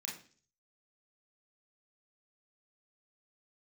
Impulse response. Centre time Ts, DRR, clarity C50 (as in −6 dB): 32 ms, −3.0 dB, 6.0 dB